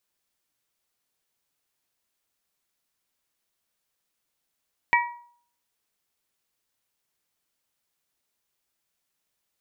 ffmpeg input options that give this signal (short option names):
-f lavfi -i "aevalsrc='0.141*pow(10,-3*t/0.55)*sin(2*PI*957*t)+0.133*pow(10,-3*t/0.339)*sin(2*PI*1914*t)+0.126*pow(10,-3*t/0.298)*sin(2*PI*2296.8*t)':d=0.89:s=44100"